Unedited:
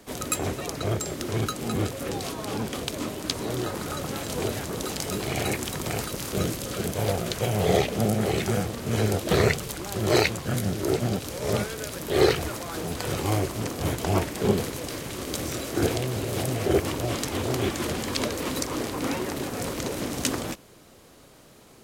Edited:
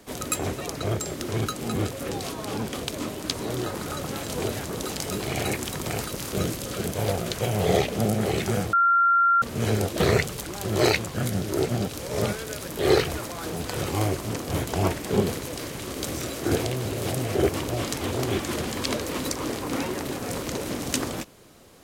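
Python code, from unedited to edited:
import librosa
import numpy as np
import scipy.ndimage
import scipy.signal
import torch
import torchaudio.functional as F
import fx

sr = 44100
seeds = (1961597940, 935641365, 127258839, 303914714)

y = fx.edit(x, sr, fx.insert_tone(at_s=8.73, length_s=0.69, hz=1380.0, db=-16.0), tone=tone)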